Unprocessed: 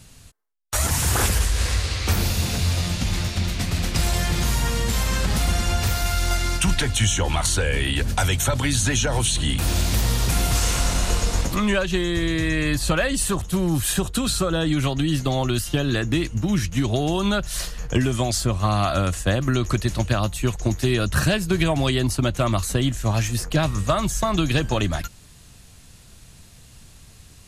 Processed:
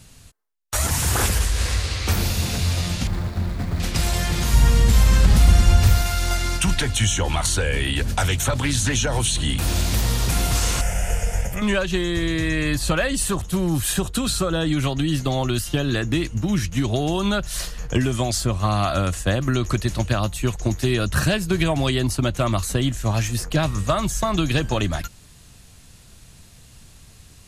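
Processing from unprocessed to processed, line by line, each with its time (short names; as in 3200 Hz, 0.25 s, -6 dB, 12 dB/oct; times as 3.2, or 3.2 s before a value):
3.07–3.8 median filter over 15 samples
4.53–6.02 low shelf 160 Hz +10.5 dB
8.16–8.97 Doppler distortion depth 0.26 ms
10.81–11.62 fixed phaser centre 1100 Hz, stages 6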